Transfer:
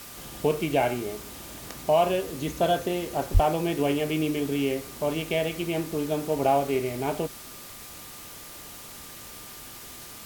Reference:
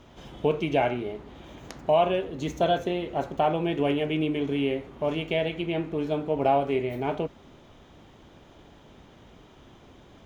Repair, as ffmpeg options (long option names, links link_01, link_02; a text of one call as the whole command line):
ffmpeg -i in.wav -filter_complex "[0:a]bandreject=frequency=1200:width=30,asplit=3[link_01][link_02][link_03];[link_01]afade=type=out:start_time=3.33:duration=0.02[link_04];[link_02]highpass=frequency=140:width=0.5412,highpass=frequency=140:width=1.3066,afade=type=in:start_time=3.33:duration=0.02,afade=type=out:start_time=3.45:duration=0.02[link_05];[link_03]afade=type=in:start_time=3.45:duration=0.02[link_06];[link_04][link_05][link_06]amix=inputs=3:normalize=0,afwtdn=0.0071" out.wav